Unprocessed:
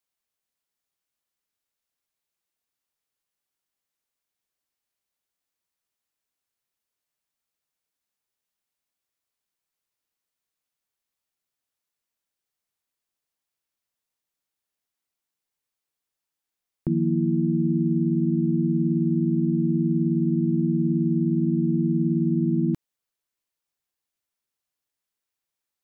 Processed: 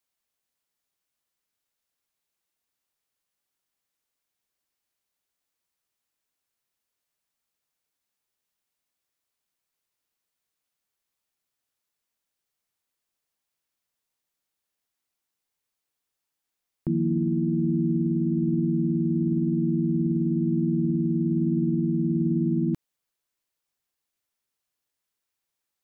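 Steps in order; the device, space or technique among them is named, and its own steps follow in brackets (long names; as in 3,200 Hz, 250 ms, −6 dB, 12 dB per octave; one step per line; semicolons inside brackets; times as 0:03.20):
stacked limiters (brickwall limiter −16 dBFS, peak gain reduction 3 dB; brickwall limiter −19 dBFS, peak gain reduction 3 dB)
level +2 dB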